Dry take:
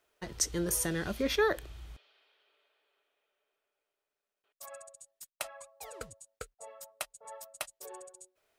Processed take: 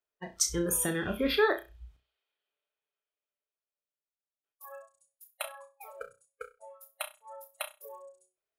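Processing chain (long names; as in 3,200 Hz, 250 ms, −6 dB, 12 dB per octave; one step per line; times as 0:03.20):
noise reduction from a noise print of the clip's start 21 dB
flutter between parallel walls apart 5.6 metres, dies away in 0.26 s
level +2 dB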